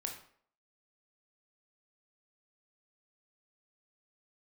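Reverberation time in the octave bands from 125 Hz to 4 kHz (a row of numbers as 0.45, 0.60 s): 0.45, 0.55, 0.60, 0.55, 0.50, 0.40 s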